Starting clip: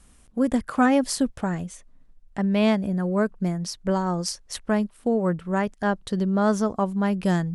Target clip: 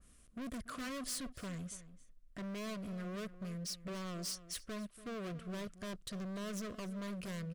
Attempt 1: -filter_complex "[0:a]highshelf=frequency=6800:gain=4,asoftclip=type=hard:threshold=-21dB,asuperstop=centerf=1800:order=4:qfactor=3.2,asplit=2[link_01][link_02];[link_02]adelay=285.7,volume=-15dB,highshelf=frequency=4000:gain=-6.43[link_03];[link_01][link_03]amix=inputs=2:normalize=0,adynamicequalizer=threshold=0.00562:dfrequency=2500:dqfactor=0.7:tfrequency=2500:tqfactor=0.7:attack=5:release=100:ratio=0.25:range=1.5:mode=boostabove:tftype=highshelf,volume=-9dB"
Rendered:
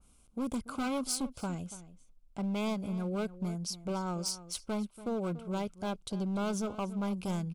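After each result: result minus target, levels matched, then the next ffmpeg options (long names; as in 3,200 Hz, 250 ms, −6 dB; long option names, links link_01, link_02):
2,000 Hz band −5.0 dB; hard clipping: distortion −6 dB
-filter_complex "[0:a]highshelf=frequency=6800:gain=4,asoftclip=type=hard:threshold=-21dB,asuperstop=centerf=850:order=4:qfactor=3.2,asplit=2[link_01][link_02];[link_02]adelay=285.7,volume=-15dB,highshelf=frequency=4000:gain=-6.43[link_03];[link_01][link_03]amix=inputs=2:normalize=0,adynamicequalizer=threshold=0.00562:dfrequency=2500:dqfactor=0.7:tfrequency=2500:tqfactor=0.7:attack=5:release=100:ratio=0.25:range=1.5:mode=boostabove:tftype=highshelf,volume=-9dB"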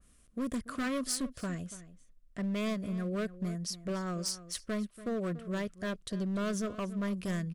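hard clipping: distortion −6 dB
-filter_complex "[0:a]highshelf=frequency=6800:gain=4,asoftclip=type=hard:threshold=-32dB,asuperstop=centerf=850:order=4:qfactor=3.2,asplit=2[link_01][link_02];[link_02]adelay=285.7,volume=-15dB,highshelf=frequency=4000:gain=-6.43[link_03];[link_01][link_03]amix=inputs=2:normalize=0,adynamicequalizer=threshold=0.00562:dfrequency=2500:dqfactor=0.7:tfrequency=2500:tqfactor=0.7:attack=5:release=100:ratio=0.25:range=1.5:mode=boostabove:tftype=highshelf,volume=-9dB"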